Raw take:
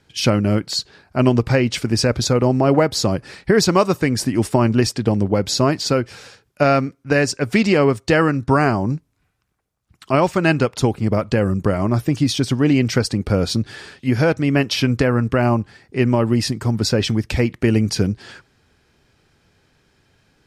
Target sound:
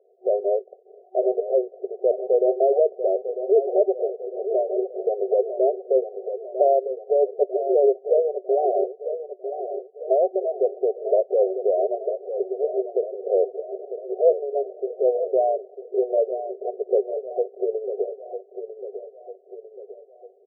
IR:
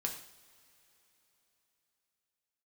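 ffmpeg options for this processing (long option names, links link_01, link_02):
-filter_complex "[0:a]asplit=2[link_01][link_02];[link_02]acompressor=threshold=-26dB:ratio=6,volume=-1.5dB[link_03];[link_01][link_03]amix=inputs=2:normalize=0,alimiter=limit=-9dB:level=0:latency=1:release=96,aecho=1:1:949|1898|2847|3796|4745:0.316|0.158|0.0791|0.0395|0.0198,afftfilt=real='re*between(b*sr/4096,370,760)':imag='im*between(b*sr/4096,370,760)':win_size=4096:overlap=0.75,volume=3dB"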